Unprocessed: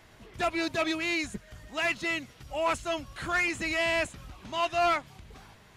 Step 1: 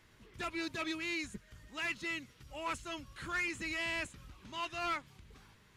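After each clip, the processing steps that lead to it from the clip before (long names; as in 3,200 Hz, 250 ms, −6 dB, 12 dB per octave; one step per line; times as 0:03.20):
parametric band 700 Hz −10 dB 0.53 octaves
level −7.5 dB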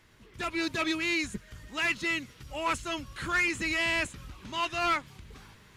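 automatic gain control gain up to 5.5 dB
level +3 dB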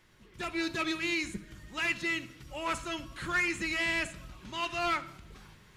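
rectangular room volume 2,100 cubic metres, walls furnished, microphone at 0.96 metres
level −3 dB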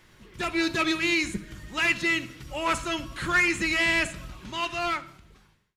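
fade-out on the ending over 1.54 s
level +7 dB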